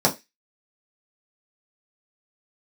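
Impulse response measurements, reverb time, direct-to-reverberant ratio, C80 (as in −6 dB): 0.20 s, −3.5 dB, 24.5 dB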